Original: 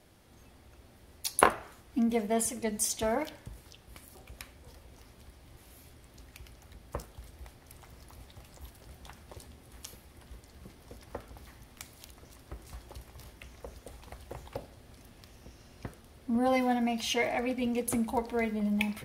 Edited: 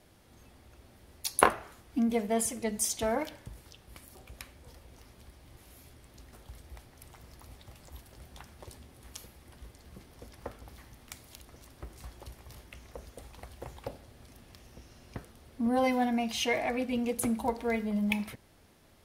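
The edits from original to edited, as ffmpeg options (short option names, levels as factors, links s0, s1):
-filter_complex "[0:a]asplit=2[s0][s1];[s0]atrim=end=6.332[s2];[s1]atrim=start=7.018[s3];[s2][s3]acrossfade=d=0.004:c1=hsin:c2=hsin"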